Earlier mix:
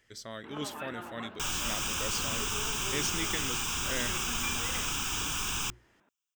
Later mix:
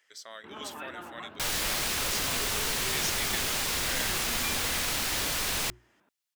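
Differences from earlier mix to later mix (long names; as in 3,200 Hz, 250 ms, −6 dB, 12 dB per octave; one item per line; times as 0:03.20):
speech: add high-pass filter 680 Hz 12 dB per octave
second sound: remove phaser with its sweep stopped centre 2,900 Hz, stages 8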